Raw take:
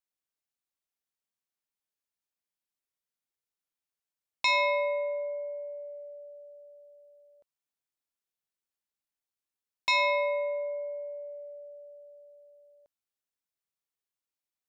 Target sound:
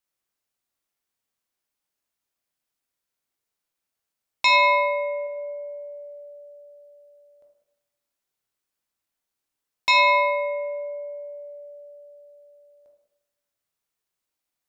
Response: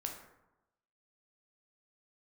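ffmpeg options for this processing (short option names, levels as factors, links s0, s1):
-filter_complex "[0:a]asettb=1/sr,asplit=3[s0][s1][s2];[s0]atrim=end=4.484[s3];[s1]atrim=start=4.48:end=5.27,asetpts=PTS-STARTPTS,afade=t=in:d=0.004:c=qsin,afade=t=out:st=0.786:d=0.004:c=qsin,highpass=91[s4];[s2]atrim=start=5.266[s5];[s3][s4]acrossfade=d=0.004:c1=hsin:c2=qsin[s6];[s6][s5]acrossfade=d=0.004:c1=qsin:c2=hsin[s7];[1:a]atrim=start_sample=2205[s8];[s7][s8]afir=irnorm=-1:irlink=0,volume=2.66"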